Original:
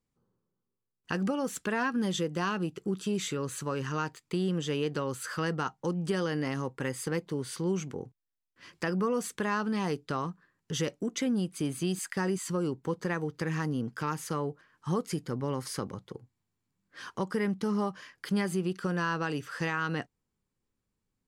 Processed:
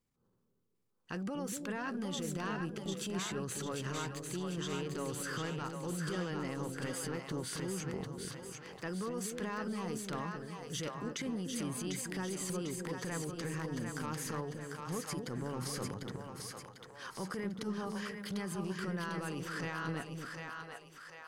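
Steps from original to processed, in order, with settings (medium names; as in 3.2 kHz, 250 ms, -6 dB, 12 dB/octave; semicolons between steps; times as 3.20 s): transient shaper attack -10 dB, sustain +6 dB; compression, threshold -37 dBFS, peak gain reduction 11 dB; on a send: two-band feedback delay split 510 Hz, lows 243 ms, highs 747 ms, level -4 dB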